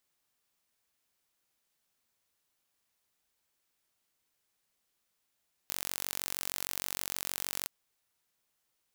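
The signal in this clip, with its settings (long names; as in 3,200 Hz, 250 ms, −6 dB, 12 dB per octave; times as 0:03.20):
impulse train 46.4 per second, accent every 0, −8 dBFS 1.97 s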